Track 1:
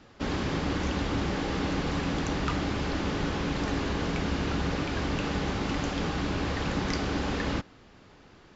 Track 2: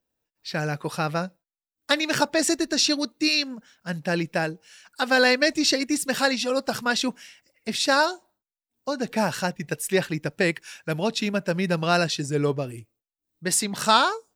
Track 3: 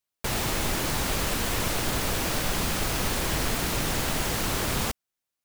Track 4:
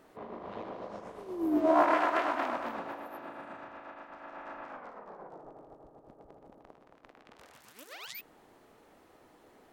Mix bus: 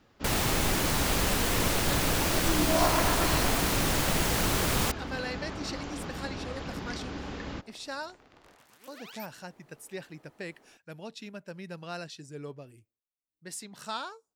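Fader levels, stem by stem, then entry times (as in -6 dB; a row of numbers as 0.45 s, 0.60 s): -8.5 dB, -17.5 dB, 0.0 dB, -3.0 dB; 0.00 s, 0.00 s, 0.00 s, 1.05 s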